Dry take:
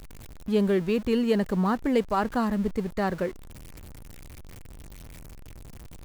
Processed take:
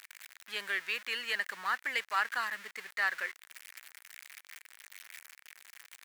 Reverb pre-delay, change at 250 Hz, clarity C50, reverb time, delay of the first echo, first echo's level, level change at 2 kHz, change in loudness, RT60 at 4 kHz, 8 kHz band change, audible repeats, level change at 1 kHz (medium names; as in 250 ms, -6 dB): no reverb, -35.5 dB, no reverb, no reverb, no echo, no echo, +6.5 dB, -7.5 dB, no reverb, +0.5 dB, no echo, -6.0 dB